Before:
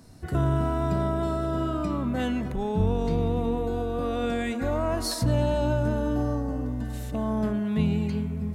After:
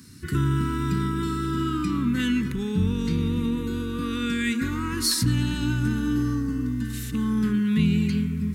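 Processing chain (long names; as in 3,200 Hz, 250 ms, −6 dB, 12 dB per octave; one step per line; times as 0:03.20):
high-pass filter 180 Hz 6 dB per octave
high-shelf EQ 11,000 Hz +3 dB
in parallel at −1 dB: brickwall limiter −21 dBFS, peak gain reduction 5.5 dB
on the sum: Butterworth band-reject 660 Hz, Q 0.59
level +2.5 dB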